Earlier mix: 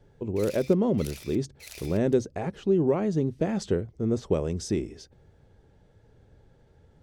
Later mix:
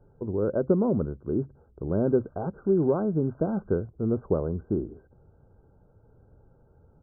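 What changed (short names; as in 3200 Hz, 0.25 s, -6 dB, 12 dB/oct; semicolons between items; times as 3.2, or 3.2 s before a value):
background: entry +1.60 s; master: add brick-wall FIR low-pass 1600 Hz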